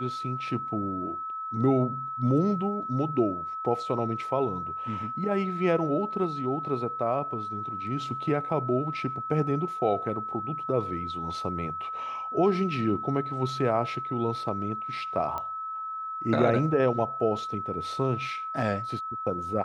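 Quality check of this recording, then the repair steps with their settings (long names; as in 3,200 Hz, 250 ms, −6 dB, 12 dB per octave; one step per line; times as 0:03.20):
whistle 1,300 Hz −32 dBFS
0:15.38: click −20 dBFS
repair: click removal
notch filter 1,300 Hz, Q 30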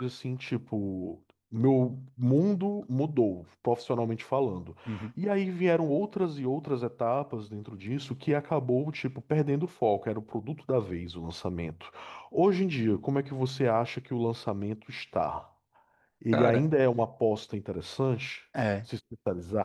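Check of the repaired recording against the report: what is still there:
none of them is left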